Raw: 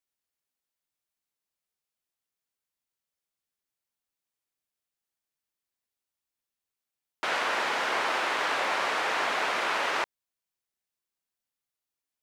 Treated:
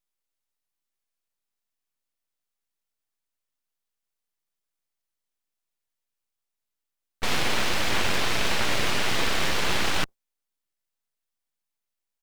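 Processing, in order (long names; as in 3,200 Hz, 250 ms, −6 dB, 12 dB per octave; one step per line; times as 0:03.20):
sub-octave generator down 1 octave, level +1 dB
in parallel at −10 dB: bit-depth reduction 6 bits, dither none
on the sum: full-wave rectification
pitch-shifted copies added −7 semitones −12 dB
level +3 dB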